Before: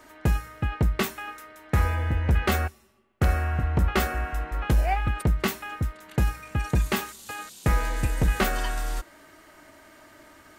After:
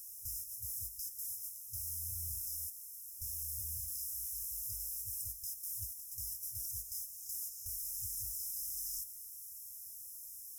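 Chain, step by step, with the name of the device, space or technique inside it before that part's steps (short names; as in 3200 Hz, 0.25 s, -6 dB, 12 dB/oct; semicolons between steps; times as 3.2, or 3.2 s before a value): baby monitor (BPF 450–3300 Hz; compressor 8:1, threshold -41 dBFS, peak gain reduction 18.5 dB; white noise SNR 16 dB; gate -47 dBFS, range -8 dB); FFT band-reject 110–5000 Hz; bell 12000 Hz +13.5 dB 0.79 oct; gain +14 dB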